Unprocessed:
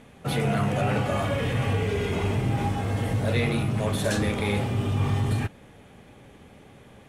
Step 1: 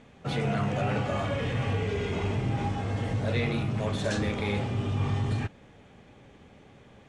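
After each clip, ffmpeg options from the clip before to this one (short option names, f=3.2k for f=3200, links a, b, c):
-af "lowpass=f=7.5k:w=0.5412,lowpass=f=7.5k:w=1.3066,volume=-3.5dB"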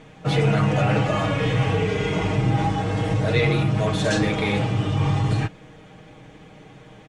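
-af "aecho=1:1:6.4:0.7,volume=6.5dB"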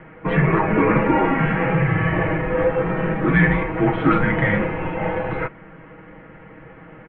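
-af "highpass=f=380:t=q:w=0.5412,highpass=f=380:t=q:w=1.307,lowpass=f=2.5k:t=q:w=0.5176,lowpass=f=2.5k:t=q:w=0.7071,lowpass=f=2.5k:t=q:w=1.932,afreqshift=-300,volume=8dB"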